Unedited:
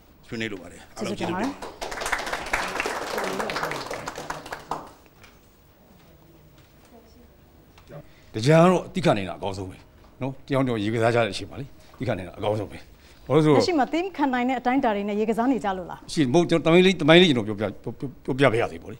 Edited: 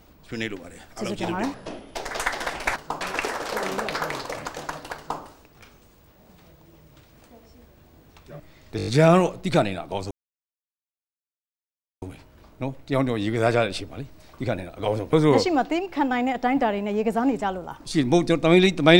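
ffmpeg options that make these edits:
-filter_complex "[0:a]asplit=12[a][b][c][d][e][f][g][h][i][j][k][l];[a]atrim=end=1.544[m];[b]atrim=start=1.54:end=1.81,asetpts=PTS-STARTPTS,asetrate=29106,aresample=44100[n];[c]atrim=start=1.806:end=2.622[o];[d]atrim=start=4.568:end=4.822[p];[e]atrim=start=2.618:end=8.402[q];[f]atrim=start=8.378:end=8.402[r];[g]atrim=start=8.378:end=8.402[s];[h]atrim=start=8.378:end=8.402[t];[i]atrim=start=8.378:end=8.402[u];[j]atrim=start=8.378:end=9.62,asetpts=PTS-STARTPTS,afade=t=out:st=1.238:d=0.004:c=hsin,apad=pad_dur=1.91[v];[k]atrim=start=9.62:end=12.732,asetpts=PTS-STARTPTS,afade=t=in:d=0.004:c=hsin[w];[l]atrim=start=13.348[x];[m][n]acrossfade=d=0.004:c1=hsin:c2=hsin[y];[y][o]acrossfade=d=0.004:c1=hsin:c2=hsin[z];[z][p]acrossfade=d=0.004:c1=hsin:c2=hsin[aa];[aa][q]acrossfade=d=0.004:c1=hsin:c2=hsin[ab];[ab][r]acrossfade=d=0.004:c1=hsin:c2=hsin[ac];[ac][s]acrossfade=d=0.004:c1=hsin:c2=hsin[ad];[ad][t]acrossfade=d=0.004:c1=hsin:c2=hsin[ae];[ae][u]acrossfade=d=0.004:c1=hsin:c2=hsin[af];[v][w]concat=n=2:v=0:a=1[ag];[af][ag]acrossfade=d=0.004:c1=hsin:c2=hsin[ah];[ah][x]acrossfade=d=0.004:c1=hsin:c2=hsin"

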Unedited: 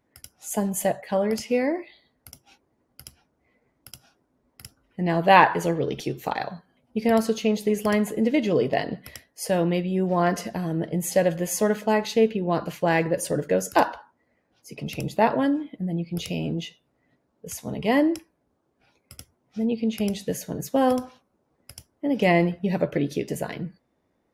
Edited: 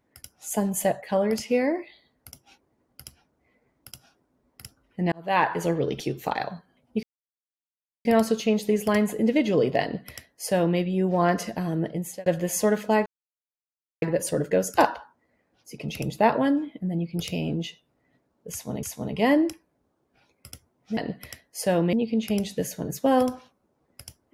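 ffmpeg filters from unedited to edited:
-filter_complex "[0:a]asplit=9[a][b][c][d][e][f][g][h][i];[a]atrim=end=5.12,asetpts=PTS-STARTPTS,afade=t=out:st=5.116:d=0.004:c=hsin[j];[b]atrim=start=5.12:end=7.03,asetpts=PTS-STARTPTS,afade=t=in:d=0.61,afade=t=out:st=1.906:d=0.004:c=hsin,apad=pad_dur=1.02[k];[c]atrim=start=7.03:end=11.24,asetpts=PTS-STARTPTS,afade=t=in:d=0.004:c=hsin,afade=t=out:st=3.79:d=0.42[l];[d]atrim=start=11.24:end=12.04,asetpts=PTS-STARTPTS,afade=t=in:d=0.004:c=hsin,afade=t=out:st=0.796:d=0.004:c=hsin[m];[e]atrim=start=12.04:end=13,asetpts=PTS-STARTPTS,volume=0[n];[f]atrim=start=13:end=17.812,asetpts=PTS-STARTPTS,afade=t=in:d=0.004:c=hsin[o];[g]atrim=start=17.488:end=19.632[p];[h]atrim=start=8.798:end=9.762[q];[i]atrim=start=19.628[r];[j][k][l][m][n][o]concat=n=6:v=0:a=1[s];[s][p]acrossfade=d=0.004:c1=hsin:c2=hsin[t];[t][q]acrossfade=d=0.004:c1=hsin:c2=hsin[u];[u][r]acrossfade=d=0.004:c1=hsin:c2=hsin"

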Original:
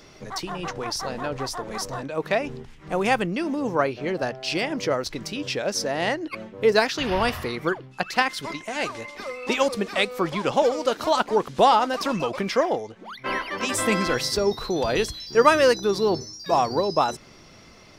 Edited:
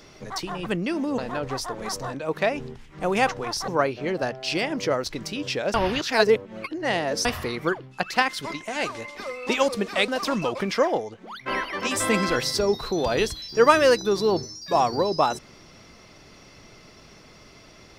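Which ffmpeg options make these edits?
-filter_complex "[0:a]asplit=8[a][b][c][d][e][f][g][h];[a]atrim=end=0.662[i];[b]atrim=start=3.158:end=3.682[j];[c]atrim=start=1.068:end=3.162[k];[d]atrim=start=0.658:end=1.072[l];[e]atrim=start=3.678:end=5.742[m];[f]atrim=start=5.738:end=7.252,asetpts=PTS-STARTPTS,areverse[n];[g]atrim=start=7.248:end=10.082[o];[h]atrim=start=11.858[p];[i][j]acrossfade=d=0.004:c1=hsin:c2=hsin[q];[q][k]acrossfade=d=0.004:c1=hsin:c2=hsin[r];[r][l]acrossfade=d=0.004:c1=hsin:c2=hsin[s];[s][m]acrossfade=d=0.004:c1=hsin:c2=hsin[t];[t][n]acrossfade=d=0.004:c1=hsin:c2=hsin[u];[u][o]acrossfade=d=0.004:c1=hsin:c2=hsin[v];[v][p]acrossfade=d=0.004:c1=hsin:c2=hsin"

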